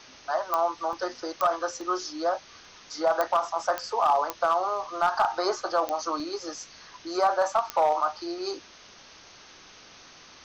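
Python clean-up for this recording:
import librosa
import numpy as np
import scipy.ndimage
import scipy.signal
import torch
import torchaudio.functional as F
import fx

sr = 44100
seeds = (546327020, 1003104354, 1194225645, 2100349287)

y = fx.fix_declip(x, sr, threshold_db=-15.5)
y = fx.fix_declick_ar(y, sr, threshold=10.0)
y = fx.fix_interpolate(y, sr, at_s=(0.93, 1.81, 2.65, 6.2), length_ms=1.1)
y = fx.noise_reduce(y, sr, print_start_s=8.65, print_end_s=9.15, reduce_db=20.0)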